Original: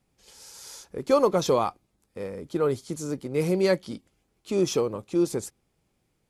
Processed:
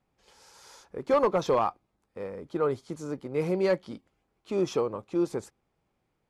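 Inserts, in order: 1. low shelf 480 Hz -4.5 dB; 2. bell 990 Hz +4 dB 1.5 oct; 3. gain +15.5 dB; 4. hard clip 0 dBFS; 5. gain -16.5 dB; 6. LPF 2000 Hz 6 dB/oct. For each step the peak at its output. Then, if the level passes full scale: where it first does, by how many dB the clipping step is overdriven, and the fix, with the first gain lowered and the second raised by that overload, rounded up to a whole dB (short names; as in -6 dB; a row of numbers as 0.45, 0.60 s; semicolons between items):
-11.0, -8.5, +7.0, 0.0, -16.5, -16.5 dBFS; step 3, 7.0 dB; step 3 +8.5 dB, step 5 -9.5 dB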